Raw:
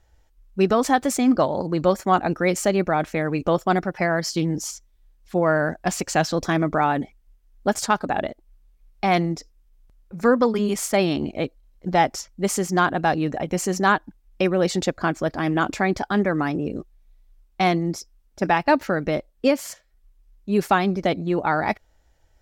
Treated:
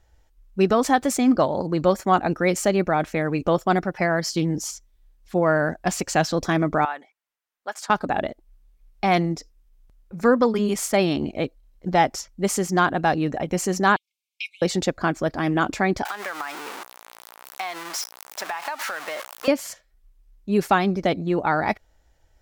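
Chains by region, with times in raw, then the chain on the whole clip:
6.85–7.90 s: high-pass 1.1 kHz + treble shelf 2.3 kHz -10 dB
13.96–14.62 s: brick-wall FIR high-pass 2.1 kHz + treble shelf 10 kHz -10.5 dB
16.05–19.48 s: jump at every zero crossing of -25 dBFS + resonant high-pass 1 kHz, resonance Q 1.5 + compression 12:1, threshold -25 dBFS
whole clip: none

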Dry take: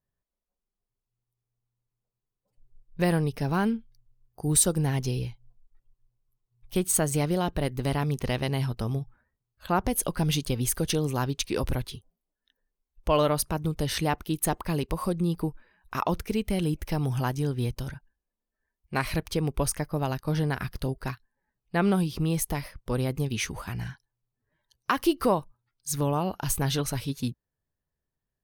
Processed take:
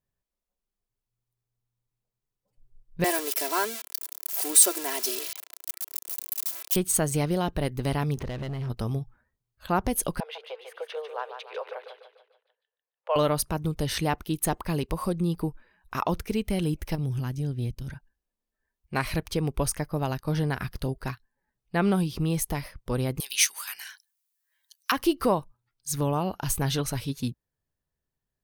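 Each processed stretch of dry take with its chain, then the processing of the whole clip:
3.04–6.76 s: zero-crossing glitches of -19.5 dBFS + high-pass 400 Hz 24 dB/octave + comb 3 ms, depth 91%
8.17–8.70 s: low-pass 1.9 kHz 6 dB/octave + compression 5:1, threshold -36 dBFS + waveshaping leveller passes 3
10.20–13.16 s: steep high-pass 460 Hz 72 dB/octave + distance through air 470 m + feedback delay 147 ms, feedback 45%, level -8 dB
16.95–17.90 s: FFT filter 200 Hz 0 dB, 750 Hz -14 dB, 2.3 kHz -6 dB + transformer saturation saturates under 120 Hz
23.20–24.92 s: high-pass 1.3 kHz + tilt EQ +4.5 dB/octave
whole clip: none

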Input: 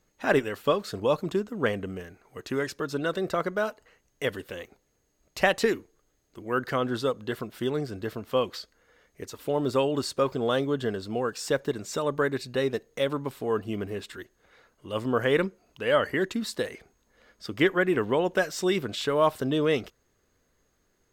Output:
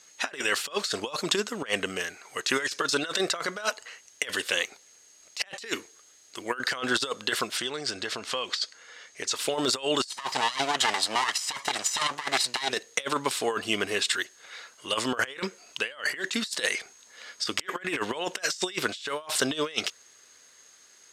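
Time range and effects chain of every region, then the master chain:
7.57–9.36 s: low-pass 8.4 kHz + compression 10:1, threshold -34 dBFS
10.09–12.70 s: comb filter that takes the minimum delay 1 ms + high-pass 210 Hz 6 dB/octave
whole clip: frequency weighting ITU-R 468; compressor with a negative ratio -33 dBFS, ratio -0.5; trim +5 dB

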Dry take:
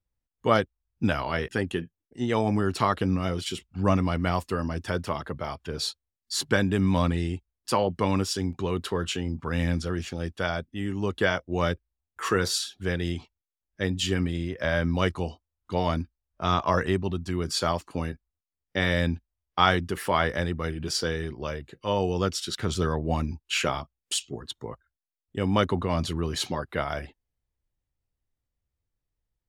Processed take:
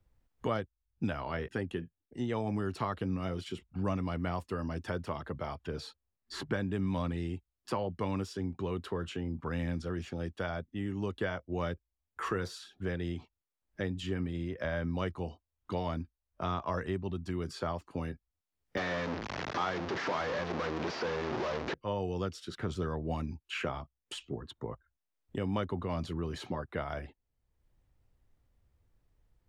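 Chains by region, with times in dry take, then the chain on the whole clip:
18.77–21.74 s: one-bit delta coder 32 kbps, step -17 dBFS + high-pass 250 Hz + de-esser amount 50%
whole clip: treble shelf 2.9 kHz -12 dB; three bands compressed up and down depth 70%; trim -8 dB

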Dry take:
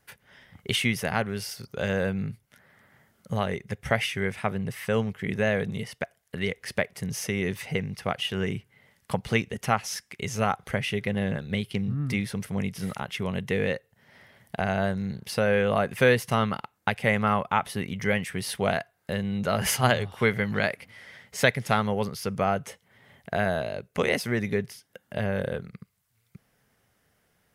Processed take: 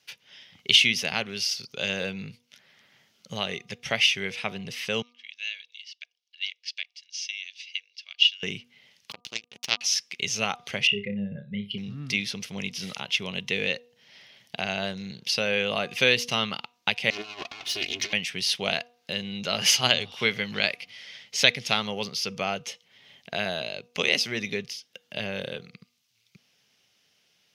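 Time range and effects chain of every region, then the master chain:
5.02–8.43 s: Butterworth band-pass 3.8 kHz, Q 1.1 + comb 1.8 ms, depth 36% + upward expansion, over -53 dBFS
9.11–9.81 s: power-law waveshaper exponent 3 + swell ahead of each attack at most 120 dB/s
10.87–11.78 s: spectral contrast enhancement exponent 2.1 + flutter echo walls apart 5.1 m, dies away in 0.24 s
17.10–18.13 s: comb filter that takes the minimum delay 2.8 ms + compressor with a negative ratio -33 dBFS, ratio -0.5
whole clip: high-pass 150 Hz 12 dB/octave; high-order bell 3.9 kHz +16 dB; de-hum 241.1 Hz, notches 5; trim -5 dB

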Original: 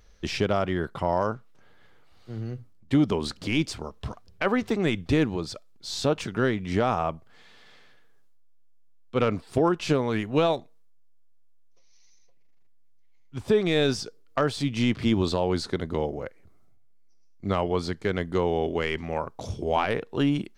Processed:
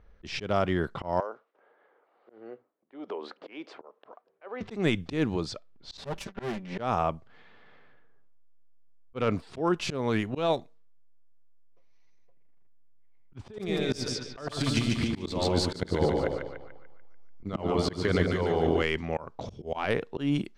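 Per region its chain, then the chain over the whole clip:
1.20–4.61 s: high-pass 440 Hz 24 dB/octave + tilt EQ -3.5 dB/octave + compression 2.5:1, threshold -35 dBFS
5.97–6.79 s: comb filter that takes the minimum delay 5.1 ms + band-stop 1.3 kHz, Q 19 + expander -33 dBFS
13.39–18.82 s: compressor with a negative ratio -28 dBFS + transient shaper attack +6 dB, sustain -4 dB + two-band feedback delay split 870 Hz, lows 98 ms, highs 146 ms, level -3.5 dB
whole clip: level-controlled noise filter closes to 1.6 kHz, open at -23 dBFS; slow attack 171 ms

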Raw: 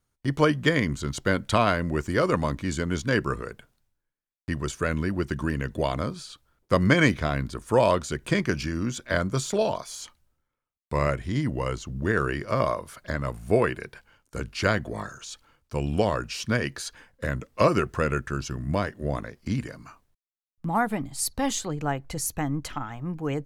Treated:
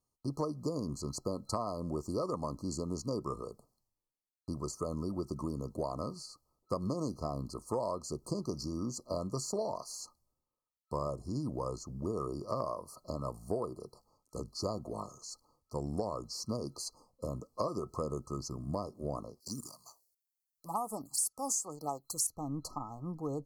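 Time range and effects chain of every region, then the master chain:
19.40–22.27 s: tilt EQ +4 dB/octave + waveshaping leveller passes 1 + touch-sensitive phaser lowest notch 160 Hz, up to 4 kHz, full sweep at -20 dBFS
whole clip: FFT band-reject 1.3–4.1 kHz; bass shelf 140 Hz -8.5 dB; compression, threshold -26 dBFS; trim -5 dB

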